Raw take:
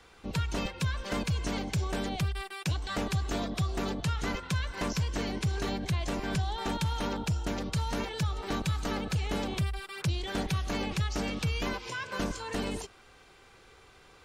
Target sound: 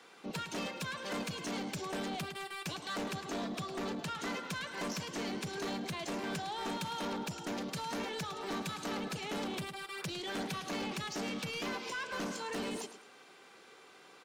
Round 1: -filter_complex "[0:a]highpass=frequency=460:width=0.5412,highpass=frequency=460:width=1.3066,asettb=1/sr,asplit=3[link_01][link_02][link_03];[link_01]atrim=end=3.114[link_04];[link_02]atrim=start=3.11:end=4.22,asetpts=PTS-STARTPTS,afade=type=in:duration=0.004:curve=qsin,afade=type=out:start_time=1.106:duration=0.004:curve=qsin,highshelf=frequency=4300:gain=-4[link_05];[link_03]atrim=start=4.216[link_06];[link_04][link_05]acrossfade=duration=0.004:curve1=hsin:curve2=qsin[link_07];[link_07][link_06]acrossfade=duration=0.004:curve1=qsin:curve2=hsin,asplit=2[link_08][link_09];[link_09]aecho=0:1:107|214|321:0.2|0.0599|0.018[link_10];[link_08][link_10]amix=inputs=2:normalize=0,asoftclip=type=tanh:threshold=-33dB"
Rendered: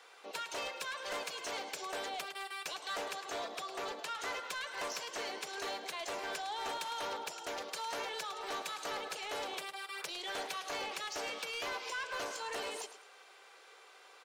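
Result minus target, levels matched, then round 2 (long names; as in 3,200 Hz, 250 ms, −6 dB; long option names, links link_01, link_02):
250 Hz band −14.0 dB
-filter_complex "[0:a]highpass=frequency=190:width=0.5412,highpass=frequency=190:width=1.3066,asettb=1/sr,asplit=3[link_01][link_02][link_03];[link_01]atrim=end=3.114[link_04];[link_02]atrim=start=3.11:end=4.22,asetpts=PTS-STARTPTS,afade=type=in:duration=0.004:curve=qsin,afade=type=out:start_time=1.106:duration=0.004:curve=qsin,highshelf=frequency=4300:gain=-4[link_05];[link_03]atrim=start=4.216[link_06];[link_04][link_05]acrossfade=duration=0.004:curve1=hsin:curve2=qsin[link_07];[link_07][link_06]acrossfade=duration=0.004:curve1=qsin:curve2=hsin,asplit=2[link_08][link_09];[link_09]aecho=0:1:107|214|321:0.2|0.0599|0.018[link_10];[link_08][link_10]amix=inputs=2:normalize=0,asoftclip=type=tanh:threshold=-33dB"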